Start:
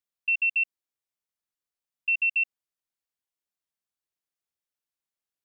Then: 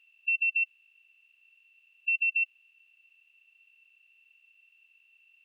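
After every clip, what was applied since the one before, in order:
compressor on every frequency bin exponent 0.4
level −3 dB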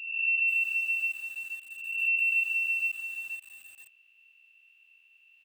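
peak hold with a rise ahead of every peak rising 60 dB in 1.07 s
single-tap delay 433 ms −12.5 dB
feedback echo at a low word length 480 ms, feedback 35%, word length 8 bits, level −4 dB

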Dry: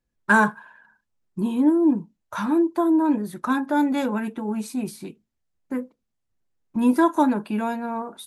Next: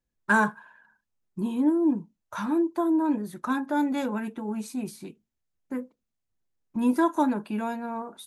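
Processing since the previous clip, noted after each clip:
parametric band 6,500 Hz +2.5 dB 0.29 octaves
level −4.5 dB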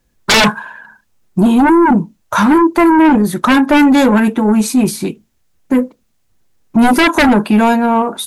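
sine wavefolder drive 14 dB, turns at −9.5 dBFS
level +4 dB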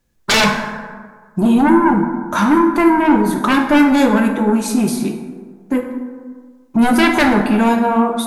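dense smooth reverb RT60 1.6 s, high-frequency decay 0.45×, DRR 3.5 dB
level −4.5 dB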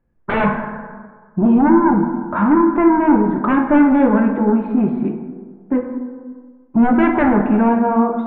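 Gaussian smoothing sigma 4.9 samples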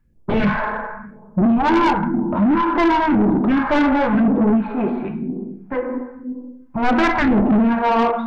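all-pass phaser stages 2, 0.97 Hz, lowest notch 130–1,700 Hz
soft clipping −18.5 dBFS, distortion −9 dB
level +6.5 dB

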